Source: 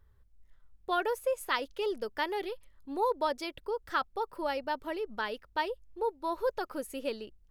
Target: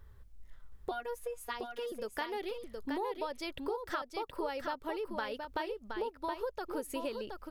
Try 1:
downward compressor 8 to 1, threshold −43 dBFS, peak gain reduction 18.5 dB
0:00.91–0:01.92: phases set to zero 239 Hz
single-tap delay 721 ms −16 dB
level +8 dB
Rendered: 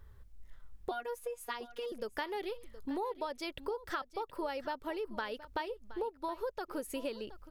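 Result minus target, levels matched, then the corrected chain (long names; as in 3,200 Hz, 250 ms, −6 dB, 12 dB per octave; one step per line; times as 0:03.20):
echo-to-direct −10.5 dB
downward compressor 8 to 1, threshold −43 dBFS, peak gain reduction 18.5 dB
0:00.91–0:01.92: phases set to zero 239 Hz
single-tap delay 721 ms −5.5 dB
level +8 dB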